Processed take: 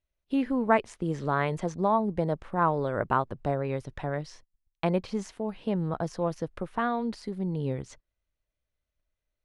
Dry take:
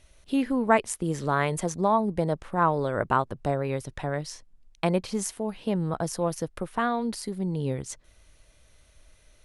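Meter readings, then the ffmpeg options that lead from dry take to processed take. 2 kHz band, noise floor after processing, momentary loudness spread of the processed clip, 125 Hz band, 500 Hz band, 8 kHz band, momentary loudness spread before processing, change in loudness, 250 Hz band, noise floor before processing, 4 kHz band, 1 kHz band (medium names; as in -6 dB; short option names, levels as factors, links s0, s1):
-2.5 dB, under -85 dBFS, 8 LU, -1.5 dB, -1.5 dB, -15.0 dB, 8 LU, -2.0 dB, -1.5 dB, -59 dBFS, -6.0 dB, -2.0 dB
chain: -filter_complex "[0:a]aemphasis=mode=reproduction:type=50fm,acrossover=split=7100[s0][s1];[s1]acompressor=threshold=0.00112:ratio=4:attack=1:release=60[s2];[s0][s2]amix=inputs=2:normalize=0,agate=range=0.0562:threshold=0.00447:ratio=16:detection=peak,volume=0.794"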